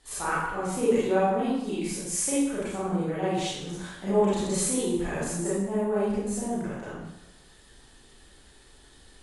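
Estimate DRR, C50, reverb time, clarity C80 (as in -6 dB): -10.0 dB, -2.5 dB, 0.90 s, 1.5 dB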